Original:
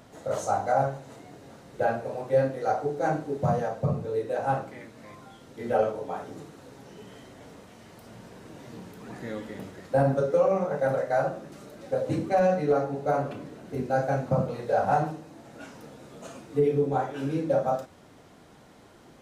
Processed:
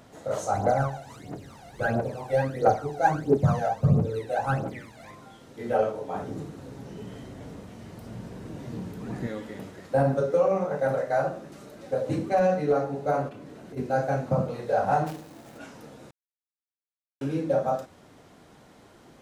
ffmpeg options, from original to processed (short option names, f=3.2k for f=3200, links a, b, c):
-filter_complex "[0:a]asplit=3[a][b][c];[a]afade=t=out:st=0.53:d=0.02[d];[b]aphaser=in_gain=1:out_gain=1:delay=1.5:decay=0.76:speed=1.5:type=triangular,afade=t=in:st=0.53:d=0.02,afade=t=out:st=5.1:d=0.02[e];[c]afade=t=in:st=5.1:d=0.02[f];[d][e][f]amix=inputs=3:normalize=0,asettb=1/sr,asplit=3[g][h][i];[g]atrim=end=6.144[j];[h]atrim=start=6.14:end=9.27,asetpts=PTS-STARTPTS,afade=t=in:d=0.004:c=qsin,afade=t=out:st=3.126:d=0.004:c=qsin,lowshelf=f=330:g=11.5[k];[i]atrim=start=9.266[l];[j][k]acrossfade=d=0.004:c1=hsin:c2=qsin[m];[m][l]acrossfade=d=0.004:c1=qsin:c2=hsin,asplit=3[n][o][p];[n]afade=t=out:st=13.28:d=0.02[q];[o]acompressor=threshold=-39dB:ratio=6:attack=3.2:release=140:knee=1:detection=peak,afade=t=in:st=13.28:d=0.02,afade=t=out:st=13.76:d=0.02[r];[p]afade=t=in:st=13.76:d=0.02[s];[q][r][s]amix=inputs=3:normalize=0,asplit=3[t][u][v];[t]afade=t=out:st=15.06:d=0.02[w];[u]acrusher=bits=2:mode=log:mix=0:aa=0.000001,afade=t=in:st=15.06:d=0.02,afade=t=out:st=15.57:d=0.02[x];[v]afade=t=in:st=15.57:d=0.02[y];[w][x][y]amix=inputs=3:normalize=0,asplit=3[z][aa][ab];[z]atrim=end=16.11,asetpts=PTS-STARTPTS,afade=t=out:st=16.106:d=0.004:c=hsin[ac];[aa]atrim=start=16.11:end=17.21,asetpts=PTS-STARTPTS,volume=0[ad];[ab]atrim=start=17.21,asetpts=PTS-STARTPTS,afade=t=in:d=0.004:c=hsin[ae];[ac][ad][ae]concat=n=3:v=0:a=1"